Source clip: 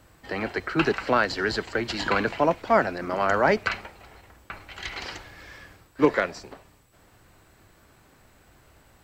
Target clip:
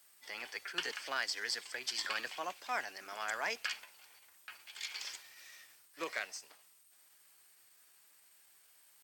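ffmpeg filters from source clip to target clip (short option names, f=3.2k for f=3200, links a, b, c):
-af "asetrate=48091,aresample=44100,atempo=0.917004,aderivative"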